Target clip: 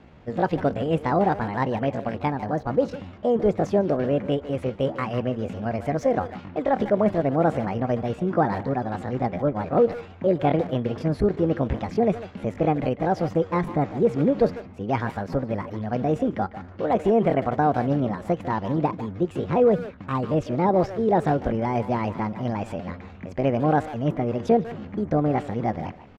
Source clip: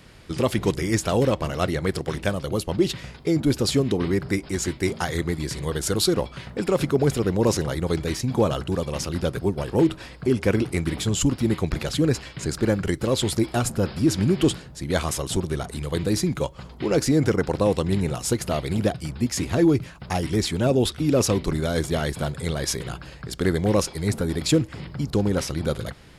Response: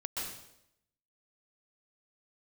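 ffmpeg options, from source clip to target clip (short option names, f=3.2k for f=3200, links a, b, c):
-filter_complex "[0:a]lowpass=1.2k,asetrate=64194,aresample=44100,atempo=0.686977,asplit=2[a][b];[b]adelay=150,highpass=300,lowpass=3.4k,asoftclip=type=hard:threshold=-19.5dB,volume=-12dB[c];[a][c]amix=inputs=2:normalize=0"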